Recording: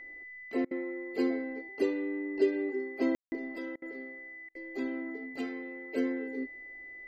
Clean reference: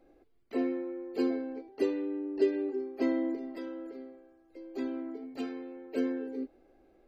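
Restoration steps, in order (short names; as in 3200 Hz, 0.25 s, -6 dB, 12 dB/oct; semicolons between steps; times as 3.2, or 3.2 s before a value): notch 2000 Hz, Q 30; room tone fill 3.15–3.32; interpolate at 0.65/3.76/4.49, 59 ms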